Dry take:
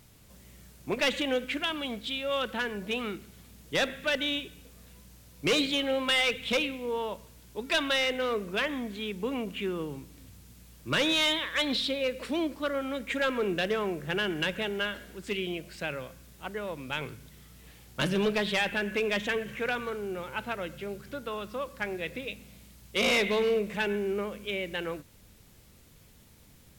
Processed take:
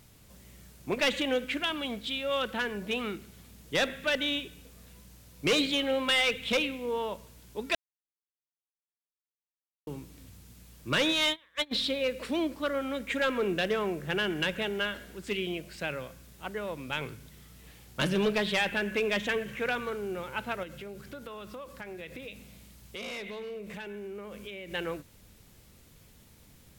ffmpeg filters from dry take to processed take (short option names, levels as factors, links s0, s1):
-filter_complex "[0:a]asplit=3[s0][s1][s2];[s0]afade=t=out:st=11.1:d=0.02[s3];[s1]agate=range=0.0447:threshold=0.0447:ratio=16:release=100:detection=peak,afade=t=in:st=11.1:d=0.02,afade=t=out:st=11.71:d=0.02[s4];[s2]afade=t=in:st=11.71:d=0.02[s5];[s3][s4][s5]amix=inputs=3:normalize=0,asettb=1/sr,asplit=3[s6][s7][s8];[s6]atrim=end=20.634[s9];[s7]atrim=start=20.63:end=24.71,asetpts=PTS-STARTPTS,afade=t=in:d=0.004:c=qsin,afade=t=out:st=4.076:d=0.004:c=qsin,acompressor=threshold=0.0126:ratio=6:attack=3.2:release=140:knee=1:detection=peak[s10];[s8]atrim=start=24.706[s11];[s9][s10]acrossfade=d=0.004:c1=hsin:c2=qsin[s12];[s12][s11]acrossfade=d=0.004:c1=qsin:c2=hsin,asplit=3[s13][s14][s15];[s13]atrim=end=7.75,asetpts=PTS-STARTPTS,afade=t=out:st=7.746:d=0.004:c=hsin[s16];[s14]atrim=start=7.75:end=9.87,asetpts=PTS-STARTPTS,volume=0[s17];[s15]atrim=start=9.87,asetpts=PTS-STARTPTS,afade=t=in:d=0.004:c=hsin[s18];[s16][s17][s18]concat=n=3:v=0:a=1"